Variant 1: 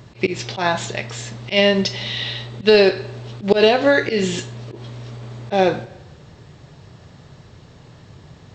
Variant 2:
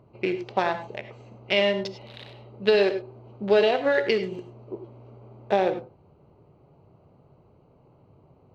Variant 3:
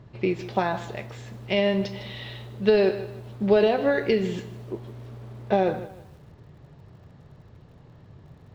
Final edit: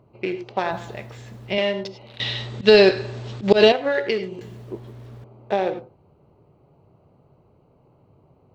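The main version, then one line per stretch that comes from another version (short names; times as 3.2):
2
0.71–1.58 from 3
2.2–3.72 from 1
4.41–5.24 from 3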